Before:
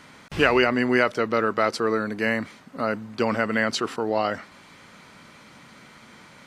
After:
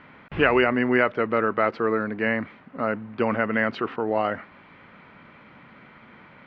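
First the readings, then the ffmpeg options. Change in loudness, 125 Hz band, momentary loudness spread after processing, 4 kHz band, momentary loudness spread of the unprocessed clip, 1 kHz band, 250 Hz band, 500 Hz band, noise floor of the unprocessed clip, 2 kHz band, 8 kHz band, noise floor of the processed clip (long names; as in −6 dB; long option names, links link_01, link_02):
−0.5 dB, 0.0 dB, 8 LU, −6.5 dB, 9 LU, 0.0 dB, 0.0 dB, 0.0 dB, −50 dBFS, −0.5 dB, below −30 dB, −51 dBFS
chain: -af "lowpass=frequency=2700:width=0.5412,lowpass=frequency=2700:width=1.3066"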